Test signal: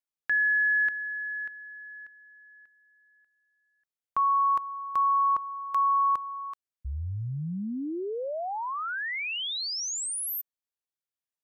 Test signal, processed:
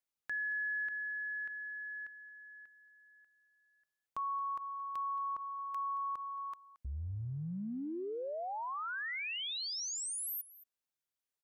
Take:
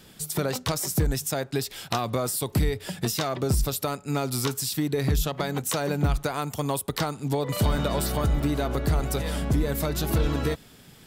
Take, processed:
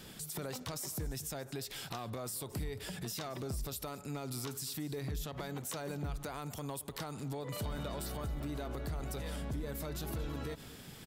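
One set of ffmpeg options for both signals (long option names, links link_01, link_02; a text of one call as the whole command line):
ffmpeg -i in.wav -filter_complex "[0:a]acompressor=threshold=-40dB:ratio=3:attack=0.57:release=51:knee=1:detection=rms,asplit=2[link_01][link_02];[link_02]aecho=0:1:224:0.126[link_03];[link_01][link_03]amix=inputs=2:normalize=0" out.wav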